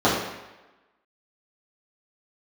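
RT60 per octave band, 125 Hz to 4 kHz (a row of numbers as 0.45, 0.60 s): 0.85, 0.95, 1.1, 1.1, 1.1, 0.90 s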